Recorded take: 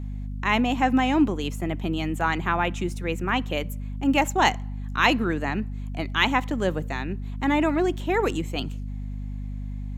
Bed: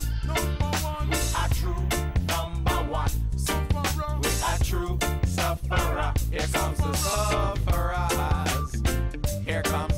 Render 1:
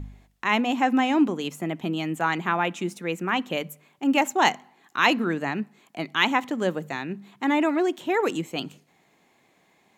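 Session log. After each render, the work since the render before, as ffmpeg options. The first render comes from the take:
-af "bandreject=f=50:t=h:w=4,bandreject=f=100:t=h:w=4,bandreject=f=150:t=h:w=4,bandreject=f=200:t=h:w=4,bandreject=f=250:t=h:w=4"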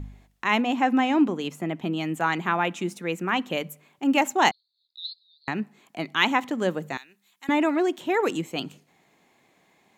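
-filter_complex "[0:a]asettb=1/sr,asplit=3[a][b][c];[a]atrim=end=0.624[d];[b]atrim=start=0.62:end=2.01,asetpts=PTS-STARTPTS,afade=t=in:d=0.004:c=qsin,afade=t=out:st=1.386:d=0.004:c=qsin,highshelf=f=5.5k:g=-6[e];[c]atrim=start=2.006[f];[d][e]acrossfade=d=0.004:c1=hsin:c2=qsin[g];[g][f]acrossfade=d=0.004:c1=qsin:c2=hsin,asettb=1/sr,asplit=3[h][i][j];[h]atrim=end=4.514[k];[i]atrim=start=4.51:end=5.48,asetpts=PTS-STARTPTS,afade=t=in:d=0.004:c=qsin,afade=t=out:st=0.966:d=0.004:c=qsin,asuperpass=centerf=4200:order=12:qfactor=3.2[l];[j]atrim=start=5.476[m];[k][l]acrossfade=d=0.004:c1=hsin:c2=qsin[n];[n][m]acrossfade=d=0.004:c1=qsin:c2=hsin,asettb=1/sr,asplit=3[o][p][q];[o]atrim=end=6.974[r];[p]atrim=start=6.97:end=7.49,asetpts=PTS-STARTPTS,afade=t=in:d=0.004:c=qsin,afade=t=out:st=0.516:d=0.004:c=qsin,aderivative[s];[q]atrim=start=7.486[t];[r][s]acrossfade=d=0.004:c1=hsin:c2=qsin[u];[u][t]acrossfade=d=0.004:c1=qsin:c2=hsin"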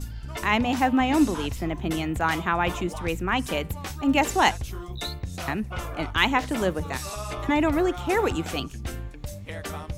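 -filter_complex "[1:a]volume=-8.5dB[a];[0:a][a]amix=inputs=2:normalize=0"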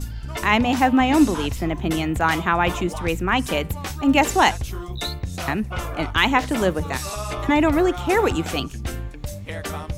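-af "volume=4.5dB,alimiter=limit=-3dB:level=0:latency=1"

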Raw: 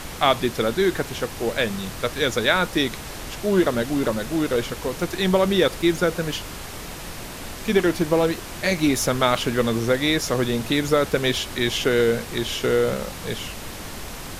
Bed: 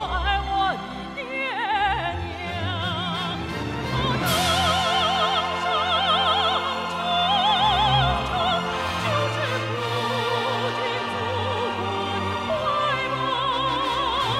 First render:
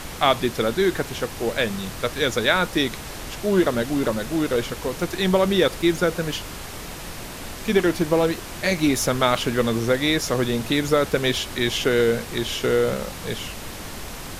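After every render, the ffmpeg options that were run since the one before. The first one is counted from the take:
-af anull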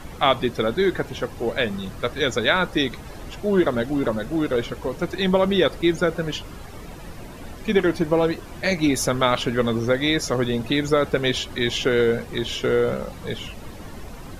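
-af "afftdn=nr=12:nf=-35"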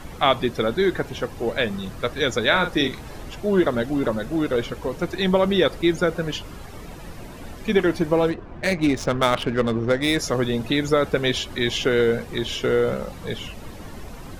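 -filter_complex "[0:a]asettb=1/sr,asplit=3[a][b][c];[a]atrim=end=2.474[d];[b]atrim=start=2.47:end=3.22,asetpts=PTS-STARTPTS,afade=t=in:d=0.004:c=qsin,afade=t=out:st=0.746:d=0.004:c=qsin,asplit=2[e][f];[f]adelay=42,volume=-8dB[g];[e][g]amix=inputs=2:normalize=0,atrim=end_sample=33075[h];[c]atrim=start=3.216[i];[d][h]acrossfade=d=0.004:c1=hsin:c2=qsin[j];[j][i]acrossfade=d=0.004:c1=qsin:c2=hsin,asettb=1/sr,asplit=3[k][l][m];[k]atrim=end=8.304[n];[l]atrim=start=8.3:end=10.18,asetpts=PTS-STARTPTS,afade=t=in:d=0.004:c=qsin,afade=t=out:st=1.876:d=0.004:c=qsin,adynamicsmooth=sensitivity=2.5:basefreq=1.5k[o];[m]atrim=start=10.176[p];[n][o]acrossfade=d=0.004:c1=hsin:c2=qsin[q];[q][p]acrossfade=d=0.004:c1=qsin:c2=hsin"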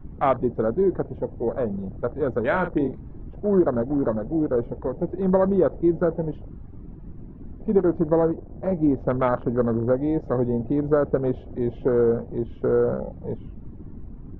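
-af "lowpass=1.1k,afwtdn=0.0282"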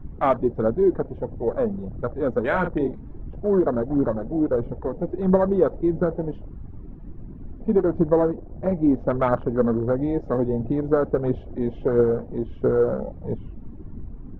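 -af "aphaser=in_gain=1:out_gain=1:delay=4.7:decay=0.33:speed=1.5:type=triangular"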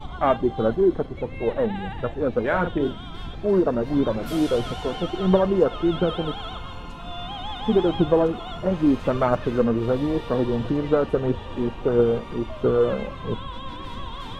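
-filter_complex "[1:a]volume=-14dB[a];[0:a][a]amix=inputs=2:normalize=0"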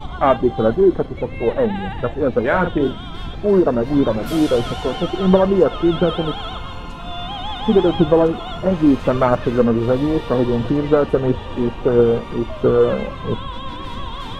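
-af "volume=5.5dB,alimiter=limit=-2dB:level=0:latency=1"

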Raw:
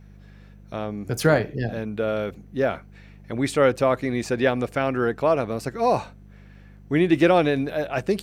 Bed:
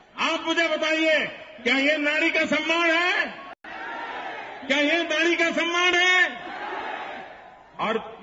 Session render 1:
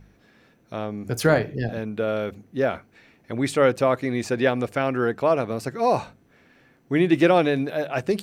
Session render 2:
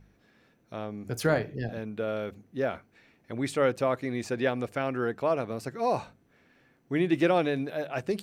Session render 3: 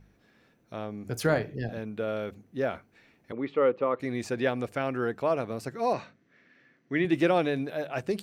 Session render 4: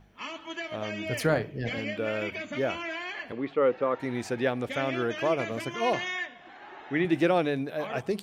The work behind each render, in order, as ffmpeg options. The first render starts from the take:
-af "bandreject=f=50:t=h:w=4,bandreject=f=100:t=h:w=4,bandreject=f=150:t=h:w=4,bandreject=f=200:t=h:w=4"
-af "volume=-6.5dB"
-filter_complex "[0:a]asettb=1/sr,asplit=3[a][b][c];[a]atrim=end=3.324[d];[b]atrim=start=3.32:end=4,asetpts=PTS-STARTPTS,afade=t=in:d=0.004:c=qsin,afade=t=out:st=0.676:d=0.004:c=qsin,highpass=230,equalizer=f=480:t=q:w=4:g=6,equalizer=f=680:t=q:w=4:g=-9,equalizer=f=1.2k:t=q:w=4:g=5,equalizer=f=1.6k:t=q:w=4:g=-10,equalizer=f=2.4k:t=q:w=4:g=-4,lowpass=f=2.7k:w=0.5412,lowpass=f=2.7k:w=1.3066[e];[c]atrim=start=3.996[f];[d][e]acrossfade=d=0.004:c1=hsin:c2=qsin[g];[g][f]acrossfade=d=0.004:c1=qsin:c2=hsin,asettb=1/sr,asplit=3[h][i][j];[h]atrim=end=5.934[k];[i]atrim=start=5.93:end=7.05,asetpts=PTS-STARTPTS,afade=t=in:d=0.004:c=qsin,afade=t=out:st=1.116:d=0.004:c=qsin,highpass=150,equalizer=f=450:t=q:w=4:g=-3,equalizer=f=830:t=q:w=4:g=-10,equalizer=f=1.9k:t=q:w=4:g=8,lowpass=f=6.1k:w=0.5412,lowpass=f=6.1k:w=1.3066[l];[j]atrim=start=7.046[m];[k][l]acrossfade=d=0.004:c1=hsin:c2=qsin[n];[n][m]acrossfade=d=0.004:c1=qsin:c2=hsin"
-filter_complex "[1:a]volume=-14.5dB[a];[0:a][a]amix=inputs=2:normalize=0"

